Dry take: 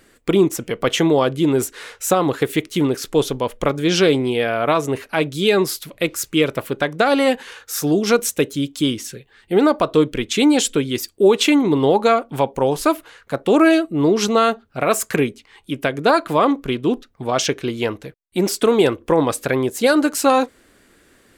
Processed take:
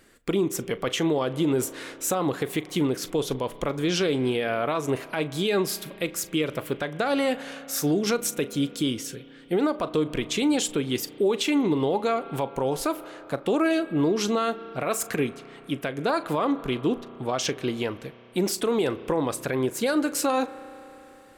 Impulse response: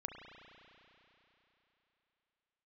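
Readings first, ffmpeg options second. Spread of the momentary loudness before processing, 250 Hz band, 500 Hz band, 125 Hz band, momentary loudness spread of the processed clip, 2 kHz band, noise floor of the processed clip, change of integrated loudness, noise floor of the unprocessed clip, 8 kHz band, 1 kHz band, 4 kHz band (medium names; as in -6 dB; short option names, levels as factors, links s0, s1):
8 LU, -7.5 dB, -8.5 dB, -6.5 dB, 7 LU, -8.5 dB, -48 dBFS, -8.0 dB, -55 dBFS, -5.5 dB, -9.0 dB, -7.0 dB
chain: -filter_complex "[0:a]asplit=2[s0][s1];[1:a]atrim=start_sample=2205,adelay=39[s2];[s1][s2]afir=irnorm=-1:irlink=0,volume=0.2[s3];[s0][s3]amix=inputs=2:normalize=0,alimiter=limit=0.266:level=0:latency=1:release=132,volume=0.631"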